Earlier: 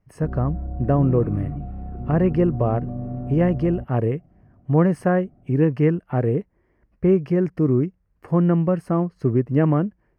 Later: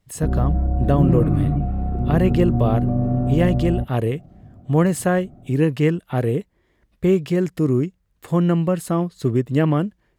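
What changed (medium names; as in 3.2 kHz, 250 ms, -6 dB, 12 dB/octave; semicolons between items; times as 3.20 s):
speech: remove boxcar filter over 12 samples; background +9.5 dB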